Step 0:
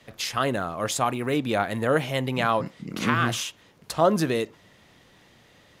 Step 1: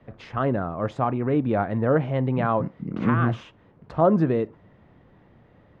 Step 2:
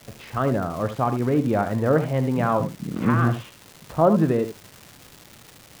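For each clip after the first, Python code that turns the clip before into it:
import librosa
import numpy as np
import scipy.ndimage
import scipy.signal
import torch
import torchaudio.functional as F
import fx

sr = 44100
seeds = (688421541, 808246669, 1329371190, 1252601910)

y1 = scipy.signal.sosfilt(scipy.signal.butter(2, 1300.0, 'lowpass', fs=sr, output='sos'), x)
y1 = fx.low_shelf(y1, sr, hz=270.0, db=7.0)
y2 = fx.dmg_crackle(y1, sr, seeds[0], per_s=520.0, level_db=-34.0)
y2 = y2 + 10.0 ** (-10.5 / 20.0) * np.pad(y2, (int(74 * sr / 1000.0), 0))[:len(y2)]
y2 = y2 * 10.0 ** (1.0 / 20.0)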